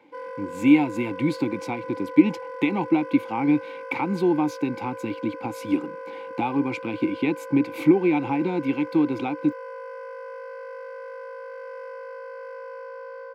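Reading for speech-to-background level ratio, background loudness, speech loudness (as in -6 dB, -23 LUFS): 13.5 dB, -37.5 LUFS, -24.0 LUFS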